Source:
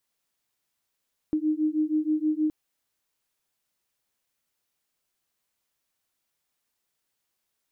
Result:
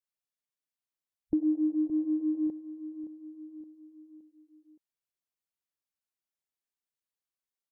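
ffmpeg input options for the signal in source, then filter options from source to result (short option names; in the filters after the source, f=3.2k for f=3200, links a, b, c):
-f lavfi -i "aevalsrc='0.0531*(sin(2*PI*305*t)+sin(2*PI*311.3*t))':d=1.17:s=44100"
-af "afwtdn=0.0158,aecho=1:1:569|1138|1707|2276:0.224|0.101|0.0453|0.0204,adynamicequalizer=threshold=0.00794:dfrequency=270:dqfactor=2.4:tfrequency=270:tqfactor=2.4:attack=5:release=100:ratio=0.375:range=3:mode=cutabove:tftype=bell"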